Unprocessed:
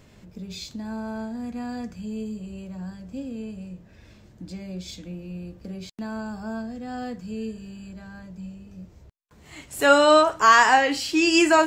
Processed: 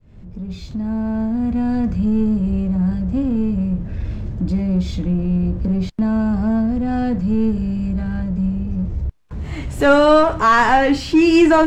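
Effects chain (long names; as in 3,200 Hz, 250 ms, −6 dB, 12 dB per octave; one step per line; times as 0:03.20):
fade in at the beginning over 1.96 s
power curve on the samples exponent 0.7
RIAA equalisation playback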